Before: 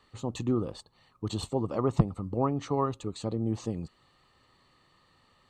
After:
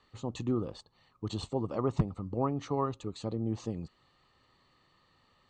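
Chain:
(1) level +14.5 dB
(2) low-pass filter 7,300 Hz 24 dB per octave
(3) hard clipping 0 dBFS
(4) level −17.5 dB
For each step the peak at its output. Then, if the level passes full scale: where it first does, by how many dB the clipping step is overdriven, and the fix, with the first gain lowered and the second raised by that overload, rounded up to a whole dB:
+6.0, +6.0, 0.0, −17.5 dBFS
step 1, 6.0 dB
step 1 +8.5 dB, step 4 −11.5 dB

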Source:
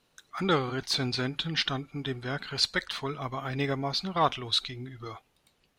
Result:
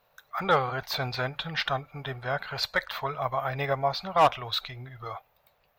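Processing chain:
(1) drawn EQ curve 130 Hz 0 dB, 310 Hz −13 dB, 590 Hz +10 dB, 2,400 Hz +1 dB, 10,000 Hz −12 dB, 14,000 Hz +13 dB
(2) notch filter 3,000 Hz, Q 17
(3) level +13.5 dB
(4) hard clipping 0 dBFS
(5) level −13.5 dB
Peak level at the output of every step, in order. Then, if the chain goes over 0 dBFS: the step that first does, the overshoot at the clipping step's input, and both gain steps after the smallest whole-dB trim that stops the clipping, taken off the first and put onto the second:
−4.5, −4.5, +9.0, 0.0, −13.5 dBFS
step 3, 9.0 dB
step 3 +4.5 dB, step 5 −4.5 dB

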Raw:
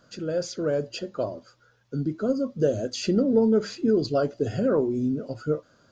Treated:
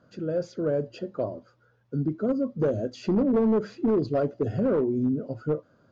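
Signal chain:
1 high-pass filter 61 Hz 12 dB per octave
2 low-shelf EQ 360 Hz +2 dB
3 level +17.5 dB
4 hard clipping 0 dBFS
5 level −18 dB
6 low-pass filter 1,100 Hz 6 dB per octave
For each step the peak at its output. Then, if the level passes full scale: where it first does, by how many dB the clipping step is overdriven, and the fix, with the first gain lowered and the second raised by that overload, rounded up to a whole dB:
−10.5, −9.5, +8.0, 0.0, −18.0, −18.0 dBFS
step 3, 8.0 dB
step 3 +9.5 dB, step 5 −10 dB

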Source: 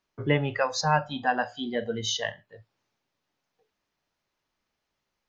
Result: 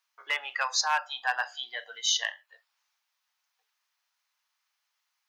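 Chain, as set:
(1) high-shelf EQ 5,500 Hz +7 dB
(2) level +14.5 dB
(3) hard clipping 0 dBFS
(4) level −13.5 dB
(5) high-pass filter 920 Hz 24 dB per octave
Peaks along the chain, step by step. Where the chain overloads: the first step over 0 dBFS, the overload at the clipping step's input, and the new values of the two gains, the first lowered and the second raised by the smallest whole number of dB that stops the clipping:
−9.0, +5.5, 0.0, −13.5, −13.0 dBFS
step 2, 5.5 dB
step 2 +8.5 dB, step 4 −7.5 dB

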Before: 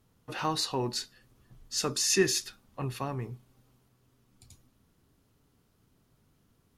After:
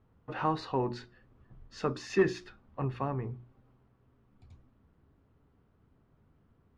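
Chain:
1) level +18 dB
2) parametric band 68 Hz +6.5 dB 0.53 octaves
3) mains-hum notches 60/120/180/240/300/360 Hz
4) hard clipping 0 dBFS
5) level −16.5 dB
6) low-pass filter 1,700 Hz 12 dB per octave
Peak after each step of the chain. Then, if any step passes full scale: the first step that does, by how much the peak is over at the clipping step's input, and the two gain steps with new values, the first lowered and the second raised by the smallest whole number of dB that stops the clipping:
+5.0, +5.0, +5.0, 0.0, −16.5, −16.0 dBFS
step 1, 5.0 dB
step 1 +13 dB, step 5 −11.5 dB

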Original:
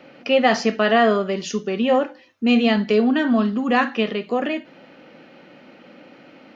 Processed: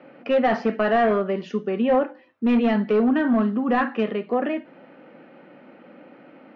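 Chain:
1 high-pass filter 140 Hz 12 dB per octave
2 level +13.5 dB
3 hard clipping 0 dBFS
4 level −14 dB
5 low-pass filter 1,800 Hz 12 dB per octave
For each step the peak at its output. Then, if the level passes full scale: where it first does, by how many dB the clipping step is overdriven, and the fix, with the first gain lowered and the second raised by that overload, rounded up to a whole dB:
−4.5, +9.0, 0.0, −14.0, −13.5 dBFS
step 2, 9.0 dB
step 2 +4.5 dB, step 4 −5 dB

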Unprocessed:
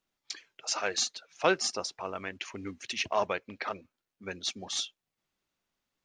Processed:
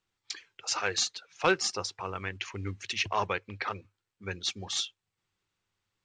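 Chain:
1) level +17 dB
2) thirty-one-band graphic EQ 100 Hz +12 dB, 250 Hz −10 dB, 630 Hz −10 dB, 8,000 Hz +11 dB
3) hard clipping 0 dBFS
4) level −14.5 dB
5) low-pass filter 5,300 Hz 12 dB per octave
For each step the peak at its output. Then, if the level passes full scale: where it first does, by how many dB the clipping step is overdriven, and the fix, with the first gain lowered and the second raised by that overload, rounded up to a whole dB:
+6.5, +5.0, 0.0, −14.5, −14.0 dBFS
step 1, 5.0 dB
step 1 +12 dB, step 4 −9.5 dB

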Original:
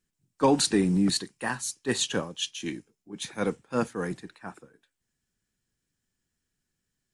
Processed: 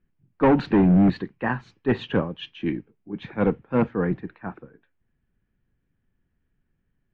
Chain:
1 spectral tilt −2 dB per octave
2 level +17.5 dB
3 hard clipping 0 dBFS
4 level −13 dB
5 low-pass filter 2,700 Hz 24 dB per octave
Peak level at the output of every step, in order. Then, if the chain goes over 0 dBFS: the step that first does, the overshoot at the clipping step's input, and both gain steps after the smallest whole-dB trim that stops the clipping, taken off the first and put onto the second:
−9.0, +8.5, 0.0, −13.0, −12.0 dBFS
step 2, 8.5 dB
step 2 +8.5 dB, step 4 −4 dB

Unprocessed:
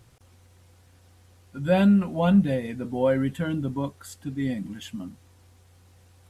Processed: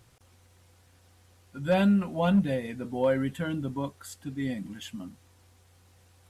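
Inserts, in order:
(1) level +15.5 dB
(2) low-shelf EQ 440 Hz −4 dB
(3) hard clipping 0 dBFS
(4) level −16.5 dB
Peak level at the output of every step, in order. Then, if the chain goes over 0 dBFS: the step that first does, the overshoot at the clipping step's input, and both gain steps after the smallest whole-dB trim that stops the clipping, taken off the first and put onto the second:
+5.5, +3.5, 0.0, −16.5 dBFS
step 1, 3.5 dB
step 1 +11.5 dB, step 4 −12.5 dB

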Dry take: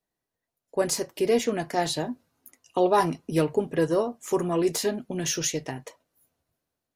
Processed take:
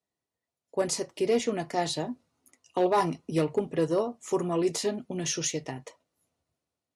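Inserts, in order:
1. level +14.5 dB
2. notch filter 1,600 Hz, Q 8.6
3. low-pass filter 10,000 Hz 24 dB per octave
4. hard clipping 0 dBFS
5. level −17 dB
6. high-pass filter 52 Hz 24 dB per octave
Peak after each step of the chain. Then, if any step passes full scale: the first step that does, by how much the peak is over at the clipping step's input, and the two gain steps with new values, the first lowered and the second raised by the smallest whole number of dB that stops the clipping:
+5.5, +5.0, +5.0, 0.0, −17.0, −14.5 dBFS
step 1, 5.0 dB
step 1 +9.5 dB, step 5 −12 dB

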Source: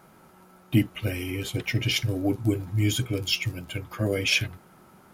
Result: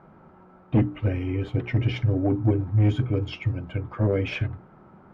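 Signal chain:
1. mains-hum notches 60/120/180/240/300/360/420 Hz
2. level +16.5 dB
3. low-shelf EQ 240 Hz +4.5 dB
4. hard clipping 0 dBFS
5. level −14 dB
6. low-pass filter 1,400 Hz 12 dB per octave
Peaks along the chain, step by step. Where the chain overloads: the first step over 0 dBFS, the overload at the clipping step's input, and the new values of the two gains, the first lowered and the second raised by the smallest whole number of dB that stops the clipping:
−9.5, +7.0, +9.0, 0.0, −14.0, −13.5 dBFS
step 2, 9.0 dB
step 2 +7.5 dB, step 5 −5 dB

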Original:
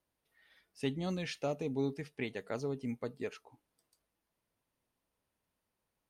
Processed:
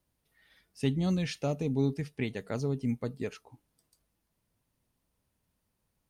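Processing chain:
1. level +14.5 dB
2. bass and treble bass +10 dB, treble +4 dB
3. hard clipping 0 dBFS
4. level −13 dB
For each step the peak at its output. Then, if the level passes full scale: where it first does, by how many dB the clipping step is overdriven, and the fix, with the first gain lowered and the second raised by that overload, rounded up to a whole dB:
−7.5, −2.0, −2.0, −15.0 dBFS
no step passes full scale

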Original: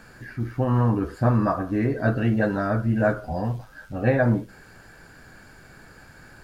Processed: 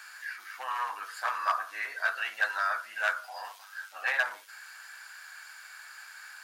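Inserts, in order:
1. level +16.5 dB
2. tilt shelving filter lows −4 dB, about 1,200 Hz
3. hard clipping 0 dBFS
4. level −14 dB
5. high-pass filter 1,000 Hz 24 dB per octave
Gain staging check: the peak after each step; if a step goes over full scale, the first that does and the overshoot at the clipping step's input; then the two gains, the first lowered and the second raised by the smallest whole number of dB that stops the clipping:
+9.0, +7.5, 0.0, −14.0, −14.0 dBFS
step 1, 7.5 dB
step 1 +8.5 dB, step 4 −6 dB

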